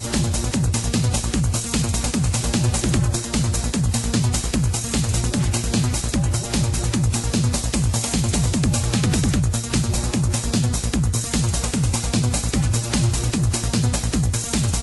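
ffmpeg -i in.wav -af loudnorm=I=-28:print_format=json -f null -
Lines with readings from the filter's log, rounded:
"input_i" : "-21.0",
"input_tp" : "-6.6",
"input_lra" : "0.5",
"input_thresh" : "-31.0",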